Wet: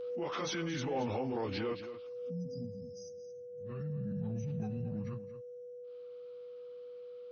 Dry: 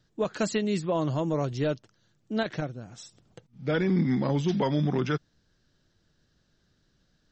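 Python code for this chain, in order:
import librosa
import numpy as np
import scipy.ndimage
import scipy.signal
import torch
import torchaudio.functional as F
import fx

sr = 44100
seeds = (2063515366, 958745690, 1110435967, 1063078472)

p1 = fx.pitch_bins(x, sr, semitones=-4.0)
p2 = fx.weighting(p1, sr, curve='A')
p3 = fx.spec_erase(p2, sr, start_s=2.07, length_s=1.43, low_hz=270.0, high_hz=4800.0)
p4 = fx.high_shelf(p3, sr, hz=3700.0, db=-12.0)
p5 = fx.spec_box(p4, sr, start_s=3.3, length_s=2.55, low_hz=220.0, high_hz=5400.0, gain_db=-27)
p6 = fx.transient(p5, sr, attack_db=-9, sustain_db=3)
p7 = fx.over_compress(p6, sr, threshold_db=-45.0, ratio=-1.0)
p8 = p6 + F.gain(torch.from_numpy(p7), 1.0).numpy()
p9 = p8 + 10.0 ** (-43.0 / 20.0) * np.sin(2.0 * np.pi * 490.0 * np.arange(len(p8)) / sr)
p10 = fx.comb_fb(p9, sr, f0_hz=250.0, decay_s=1.1, harmonics='all', damping=0.0, mix_pct=40)
p11 = p10 + fx.echo_single(p10, sr, ms=226, db=-12.5, dry=0)
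p12 = fx.pre_swell(p11, sr, db_per_s=28.0)
y = F.gain(torch.from_numpy(p12), 2.5).numpy()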